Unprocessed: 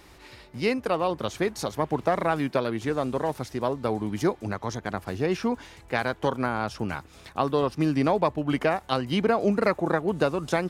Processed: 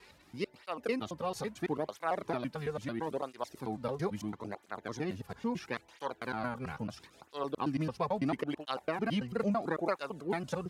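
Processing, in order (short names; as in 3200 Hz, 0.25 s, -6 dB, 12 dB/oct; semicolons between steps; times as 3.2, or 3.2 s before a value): slices in reverse order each 0.111 s, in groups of 3; tape flanging out of phase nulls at 0.75 Hz, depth 3.5 ms; gain -6.5 dB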